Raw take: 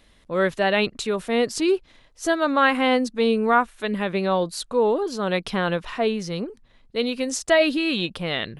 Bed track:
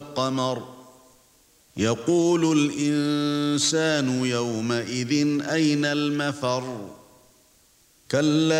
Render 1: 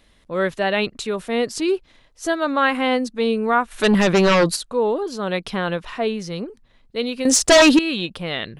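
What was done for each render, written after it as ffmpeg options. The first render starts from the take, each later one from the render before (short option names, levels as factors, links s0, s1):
-filter_complex "[0:a]asplit=3[s0][s1][s2];[s0]afade=t=out:st=3.7:d=0.02[s3];[s1]aeval=exprs='0.282*sin(PI/2*2.82*val(0)/0.282)':c=same,afade=t=in:st=3.7:d=0.02,afade=t=out:st=4.55:d=0.02[s4];[s2]afade=t=in:st=4.55:d=0.02[s5];[s3][s4][s5]amix=inputs=3:normalize=0,asettb=1/sr,asplit=3[s6][s7][s8];[s6]atrim=end=7.254[s9];[s7]atrim=start=7.25:end=7.79,asetpts=PTS-STARTPTS,afade=t=in:d=0.004:c=qsin,afade=t=out:st=0.536:d=0.004:c=qsin,aeval=exprs='0.447*sin(PI/2*2.82*val(0)/0.447)':c=same[s10];[s8]atrim=start=7.786[s11];[s9][s10]acrossfade=d=0.004:c1=hsin:c2=qsin[s12];[s12][s11]acrossfade=d=0.004:c1=qsin:c2=hsin"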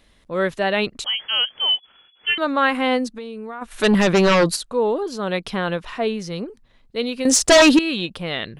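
-filter_complex "[0:a]asettb=1/sr,asplit=3[s0][s1][s2];[s0]atrim=end=1.044[s3];[s1]atrim=start=1.04:end=2.38,asetpts=PTS-STARTPTS,afade=t=in:d=0.004:c=qsin,afade=t=out:st=1.336:d=0.004:c=qsin,lowpass=f=2900:t=q:w=0.5098,lowpass=f=2900:t=q:w=0.6013,lowpass=f=2900:t=q:w=0.9,lowpass=f=2900:t=q:w=2.563,afreqshift=-3400[s4];[s2]atrim=start=2.376[s5];[s3][s4]acrossfade=d=0.004:c1=hsin:c2=qsin[s6];[s6][s5]acrossfade=d=0.004:c1=qsin:c2=hsin,asplit=3[s7][s8][s9];[s7]afade=t=out:st=3.09:d=0.02[s10];[s8]acompressor=threshold=0.0316:ratio=6:attack=3.2:release=140:knee=1:detection=peak,afade=t=in:st=3.09:d=0.02,afade=t=out:st=3.61:d=0.02[s11];[s9]afade=t=in:st=3.61:d=0.02[s12];[s10][s11][s12]amix=inputs=3:normalize=0"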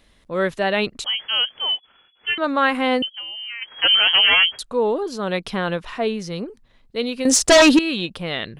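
-filter_complex "[0:a]asettb=1/sr,asplit=3[s0][s1][s2];[s0]atrim=end=1.594[s3];[s1]atrim=start=1.59:end=2.44,asetpts=PTS-STARTPTS,afade=t=in:d=0.004:c=qsin,afade=t=out:st=0.846:d=0.004:c=qsin,lowpass=3000[s4];[s2]atrim=start=2.436[s5];[s3][s4]acrossfade=d=0.004:c1=hsin:c2=qsin[s6];[s6][s5]acrossfade=d=0.004:c1=qsin:c2=hsin,asettb=1/sr,asplit=3[s7][s8][s9];[s7]atrim=end=3.024[s10];[s8]atrim=start=3.02:end=4.59,asetpts=PTS-STARTPTS,afade=t=in:d=0.004:c=qsin,afade=t=out:st=1.566:d=0.004:c=qsin,lowpass=f=2800:t=q:w=0.5098,lowpass=f=2800:t=q:w=0.6013,lowpass=f=2800:t=q:w=0.9,lowpass=f=2800:t=q:w=2.563,afreqshift=-3300[s11];[s9]atrim=start=4.586[s12];[s10][s11]acrossfade=d=0.004:c1=hsin:c2=qsin[s13];[s13][s12]acrossfade=d=0.004:c1=qsin:c2=hsin"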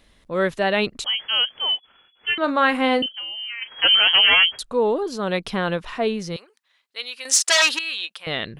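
-filter_complex "[0:a]asettb=1/sr,asplit=3[s0][s1][s2];[s0]atrim=end=2.374[s3];[s1]atrim=start=2.37:end=3.89,asetpts=PTS-STARTPTS,afade=t=in:d=0.004:c=qsin,afade=t=out:st=1.516:d=0.004:c=qsin,asplit=2[s4][s5];[s5]adelay=38,volume=0.224[s6];[s4][s6]amix=inputs=2:normalize=0,atrim=end_sample=67032[s7];[s2]atrim=start=3.886[s8];[s3][s7]acrossfade=d=0.004:c1=hsin:c2=qsin[s9];[s9][s8]acrossfade=d=0.004:c1=qsin:c2=hsin,asettb=1/sr,asplit=3[s10][s11][s12];[s10]atrim=end=6.364[s13];[s11]atrim=start=6.36:end=8.27,asetpts=PTS-STARTPTS,afade=t=in:d=0.004:c=qsin,afade=t=out:st=1.906:d=0.004:c=qsin,highpass=1400[s14];[s12]atrim=start=8.266[s15];[s13][s14]acrossfade=d=0.004:c1=hsin:c2=qsin[s16];[s16][s15]acrossfade=d=0.004:c1=qsin:c2=hsin"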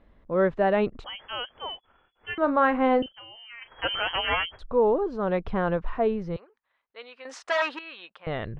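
-af "lowpass=1200,asubboost=boost=5:cutoff=86"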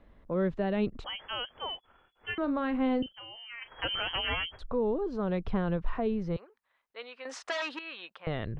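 -filter_complex "[0:a]acrossover=split=320|3000[s0][s1][s2];[s1]acompressor=threshold=0.02:ratio=6[s3];[s0][s3][s2]amix=inputs=3:normalize=0"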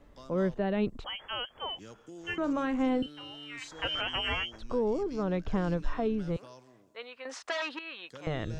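-filter_complex "[1:a]volume=0.0473[s0];[0:a][s0]amix=inputs=2:normalize=0"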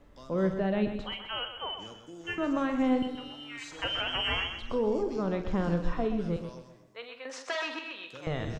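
-filter_complex "[0:a]asplit=2[s0][s1];[s1]adelay=47,volume=0.299[s2];[s0][s2]amix=inputs=2:normalize=0,asplit=2[s3][s4];[s4]aecho=0:1:127|254|381|508:0.355|0.135|0.0512|0.0195[s5];[s3][s5]amix=inputs=2:normalize=0"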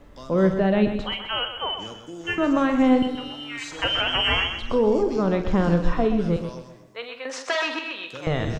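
-af "volume=2.66"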